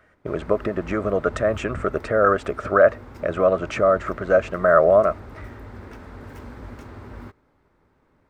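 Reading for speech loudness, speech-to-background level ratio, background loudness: -20.5 LUFS, 20.0 dB, -40.5 LUFS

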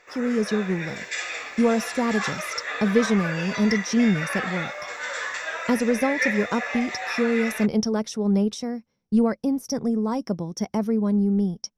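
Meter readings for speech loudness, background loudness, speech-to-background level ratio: -24.5 LUFS, -29.5 LUFS, 5.0 dB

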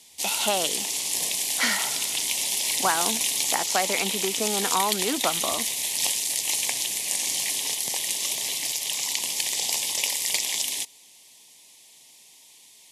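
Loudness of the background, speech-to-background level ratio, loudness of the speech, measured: -24.5 LUFS, -4.0 dB, -28.5 LUFS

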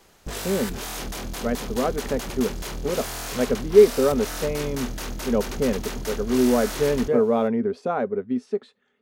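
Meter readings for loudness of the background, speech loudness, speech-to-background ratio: -32.5 LUFS, -24.0 LUFS, 8.5 dB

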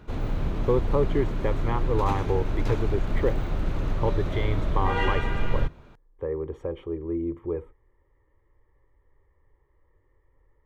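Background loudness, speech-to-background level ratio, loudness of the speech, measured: -30.0 LUFS, 0.0 dB, -30.0 LUFS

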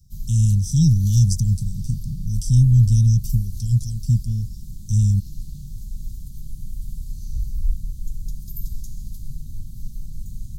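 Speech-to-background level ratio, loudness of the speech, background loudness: 15.5 dB, -19.5 LUFS, -35.0 LUFS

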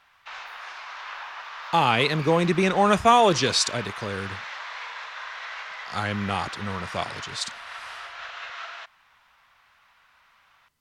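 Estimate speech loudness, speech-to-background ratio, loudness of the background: -23.0 LUFS, 13.5 dB, -36.5 LUFS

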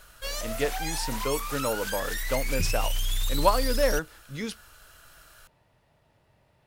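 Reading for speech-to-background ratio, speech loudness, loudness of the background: 1.0 dB, -30.5 LUFS, -31.5 LUFS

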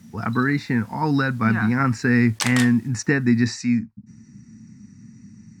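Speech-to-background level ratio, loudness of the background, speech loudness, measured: 7.0 dB, -28.0 LUFS, -21.0 LUFS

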